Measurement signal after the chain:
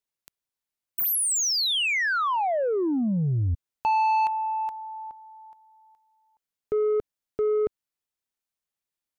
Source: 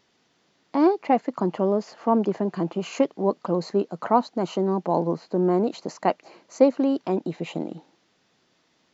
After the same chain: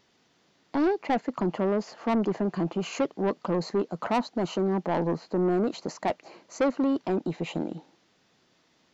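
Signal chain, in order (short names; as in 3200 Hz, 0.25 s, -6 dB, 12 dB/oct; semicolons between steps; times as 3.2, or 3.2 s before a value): low shelf 130 Hz +3 dB; soft clip -19.5 dBFS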